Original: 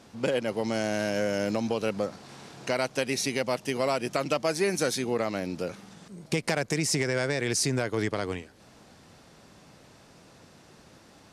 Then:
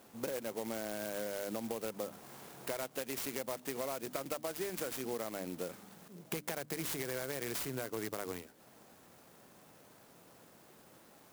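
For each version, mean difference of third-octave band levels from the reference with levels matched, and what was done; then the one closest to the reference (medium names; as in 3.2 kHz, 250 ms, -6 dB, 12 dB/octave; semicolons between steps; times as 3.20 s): 6.5 dB: high-pass 220 Hz 6 dB/octave; hum notches 50/100/150/200/250/300 Hz; compression, threshold -31 dBFS, peak gain reduction 9 dB; sampling jitter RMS 0.081 ms; trim -4 dB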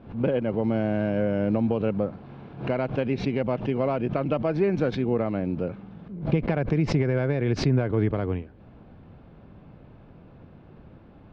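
9.0 dB: low-pass 3.2 kHz 24 dB/octave; tilt EQ -3.5 dB/octave; band-stop 1.9 kHz, Q 12; swell ahead of each attack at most 130 dB/s; trim -1.5 dB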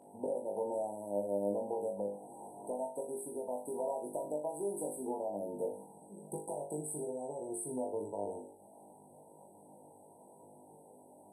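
14.0 dB: frequency weighting A; compression, threshold -35 dBFS, peak gain reduction 12 dB; brick-wall FIR band-stop 990–7900 Hz; on a send: flutter echo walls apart 3.4 m, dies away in 0.44 s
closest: first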